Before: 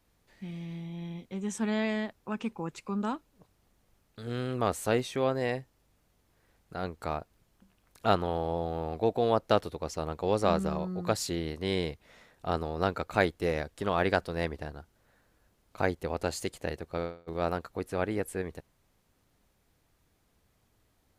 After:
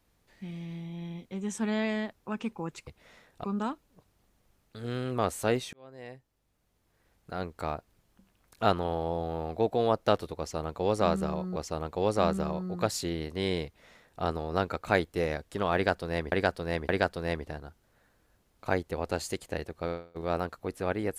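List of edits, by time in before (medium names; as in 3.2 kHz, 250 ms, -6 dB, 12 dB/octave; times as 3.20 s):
5.16–6.76 s: fade in
9.82–10.99 s: loop, 2 plays
11.91–12.48 s: copy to 2.87 s
14.01–14.58 s: loop, 3 plays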